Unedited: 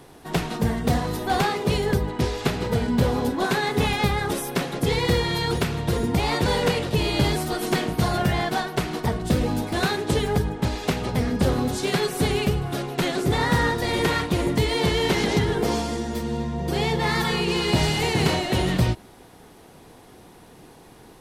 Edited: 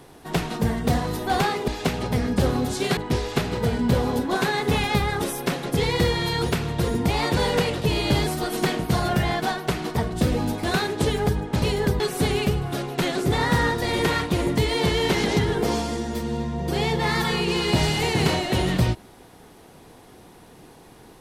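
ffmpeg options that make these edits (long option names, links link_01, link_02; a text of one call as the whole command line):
ffmpeg -i in.wav -filter_complex "[0:a]asplit=5[link_01][link_02][link_03][link_04][link_05];[link_01]atrim=end=1.682[link_06];[link_02]atrim=start=10.708:end=12.002[link_07];[link_03]atrim=start=2.058:end=10.712[link_08];[link_04]atrim=start=1.678:end=2.062[link_09];[link_05]atrim=start=11.998[link_10];[link_06][link_07]acrossfade=duration=0.004:curve1=hsin:curve2=hsin[link_11];[link_11][link_08]acrossfade=duration=0.004:curve1=hsin:curve2=hsin[link_12];[link_12][link_09]acrossfade=duration=0.004:curve1=hsin:curve2=hsin[link_13];[link_13][link_10]acrossfade=duration=0.004:curve1=hsin:curve2=hsin" out.wav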